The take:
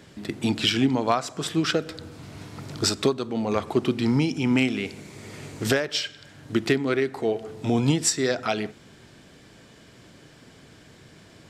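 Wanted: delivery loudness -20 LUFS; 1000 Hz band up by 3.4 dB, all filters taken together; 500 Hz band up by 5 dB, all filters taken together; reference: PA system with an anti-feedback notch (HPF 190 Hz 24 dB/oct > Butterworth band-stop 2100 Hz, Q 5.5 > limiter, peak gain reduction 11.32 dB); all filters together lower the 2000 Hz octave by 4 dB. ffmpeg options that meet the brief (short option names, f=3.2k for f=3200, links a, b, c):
-af "highpass=f=190:w=0.5412,highpass=f=190:w=1.3066,asuperstop=centerf=2100:order=8:qfactor=5.5,equalizer=f=500:t=o:g=6,equalizer=f=1k:t=o:g=3.5,equalizer=f=2k:t=o:g=-5.5,volume=7.5dB,alimiter=limit=-10dB:level=0:latency=1"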